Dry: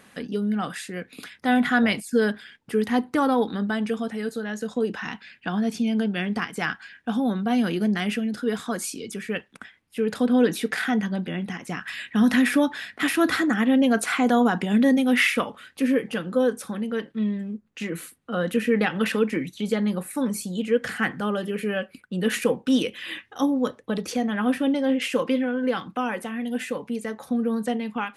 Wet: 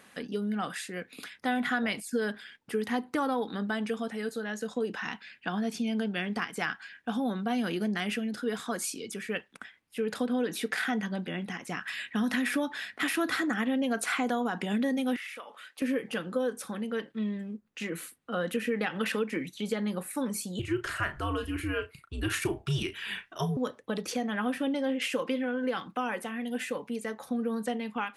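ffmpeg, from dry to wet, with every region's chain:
-filter_complex "[0:a]asettb=1/sr,asplit=3[s0][s1][s2];[s0]atrim=end=15.164[s3];[s1]atrim=start=15.16:end=15.82,asetpts=PTS-STARTPTS,afade=t=in:d=0.004:c=qsin,afade=t=out:st=0.656:d=0.004:c=qsin,highpass=500,acompressor=threshold=0.0126:ratio=4:attack=3.2:release=140:knee=1:detection=peak[s4];[s2]atrim=start=15.816[s5];[s3][s4]acrossfade=d=0.004:c1=hsin:c2=qsin[s6];[s6][s5]acrossfade=d=0.004:c1=qsin:c2=hsin,asettb=1/sr,asplit=3[s7][s8][s9];[s7]atrim=end=20.594[s10];[s8]atrim=start=20.59:end=23.57,asetpts=PTS-STARTPTS,afade=t=in:d=0.004:c=qsin,afade=t=out:st=2.976:d=0.004:c=qsin,afreqshift=-120,asplit=2[s11][s12];[s12]adelay=35,volume=0.316[s13];[s11][s13]amix=inputs=2:normalize=0,atrim=end_sample=131418[s14];[s9]atrim=start=23.566[s15];[s10][s14]acrossfade=d=0.004:c1=hsin:c2=qsin[s16];[s16][s15]acrossfade=d=0.004:c1=qsin:c2=hsin,lowshelf=f=240:g=-7,acompressor=threshold=0.0708:ratio=6,volume=0.75"

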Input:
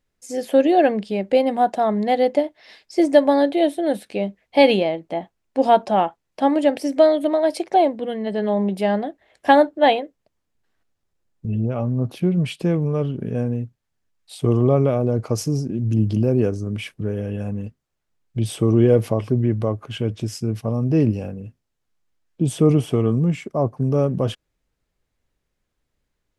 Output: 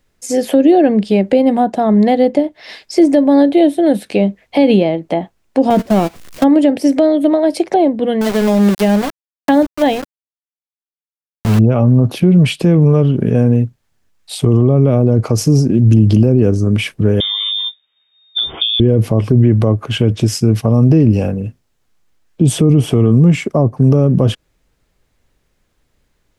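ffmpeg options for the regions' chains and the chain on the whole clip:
-filter_complex "[0:a]asettb=1/sr,asplit=3[s0][s1][s2];[s0]atrim=end=5.704[s3];[s1]atrim=start=5.7:end=6.44,asetpts=PTS-STARTPTS,afade=t=in:d=0.004:c=qsin,afade=t=out:st=0.736:d=0.004:c=qsin,aeval=exprs='val(0)+0.5*0.0891*sgn(val(0))':c=same,equalizer=f=840:t=o:w=0.25:g=-10,agate=range=0.1:threshold=0.0708:ratio=16:release=100:detection=peak[s4];[s2]atrim=start=6.436[s5];[s3][s4]acrossfade=d=0.004:c1=hsin:c2=qsin[s6];[s6][s5]acrossfade=d=0.004:c1=qsin:c2=hsin,asettb=1/sr,asplit=3[s7][s8][s9];[s7]atrim=end=8.214[s10];[s8]atrim=start=8.21:end=11.59,asetpts=PTS-STARTPTS,afade=t=in:d=0.004:c=qsin,afade=t=out:st=3.376:d=0.004:c=qsin,equalizer=f=700:w=0.36:g=-3,aeval=exprs='val(0)*gte(abs(val(0)),0.0398)':c=same[s11];[s9]atrim=start=11.586[s12];[s10][s11]acrossfade=d=0.004:c1=hsin:c2=qsin[s13];[s13][s12]acrossfade=d=0.004:c1=qsin:c2=hsin,asettb=1/sr,asplit=3[s14][s15][s16];[s14]atrim=end=17.204[s17];[s15]atrim=start=17.2:end=18.8,asetpts=PTS-STARTPTS,afade=t=in:d=0.004:c=qsin,afade=t=out:st=1.596:d=0.004:c=qsin,lowpass=f=3100:t=q:w=0.5098,lowpass=f=3100:t=q:w=0.6013,lowpass=f=3100:t=q:w=0.9,lowpass=f=3100:t=q:w=2.563,afreqshift=-3700,asplit=2[s18][s19];[s19]adelay=13,volume=0.631[s20];[s18][s20]amix=inputs=2:normalize=0,atrim=end_sample=70560[s21];[s16]atrim=start=18.796[s22];[s17][s21]acrossfade=d=0.004:c1=hsin:c2=qsin[s23];[s23][s22]acrossfade=d=0.004:c1=qsin:c2=hsin,acrossover=split=360[s24][s25];[s25]acompressor=threshold=0.0355:ratio=5[s26];[s24][s26]amix=inputs=2:normalize=0,alimiter=level_in=5.01:limit=0.891:release=50:level=0:latency=1,volume=0.891"

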